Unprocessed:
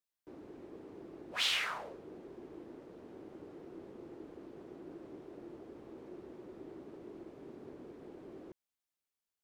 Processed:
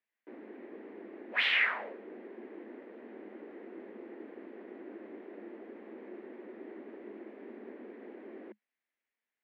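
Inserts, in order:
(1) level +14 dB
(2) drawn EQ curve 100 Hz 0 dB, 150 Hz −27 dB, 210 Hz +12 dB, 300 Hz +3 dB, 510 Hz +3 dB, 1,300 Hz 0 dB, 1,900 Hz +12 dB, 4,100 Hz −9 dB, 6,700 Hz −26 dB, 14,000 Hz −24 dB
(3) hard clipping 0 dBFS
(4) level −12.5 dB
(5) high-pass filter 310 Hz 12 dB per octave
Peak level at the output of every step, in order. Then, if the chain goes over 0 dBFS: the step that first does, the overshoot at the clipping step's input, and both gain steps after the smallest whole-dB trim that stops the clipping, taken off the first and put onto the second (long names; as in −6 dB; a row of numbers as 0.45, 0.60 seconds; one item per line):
−5.5, −3.0, −3.0, −15.5, −16.0 dBFS
no step passes full scale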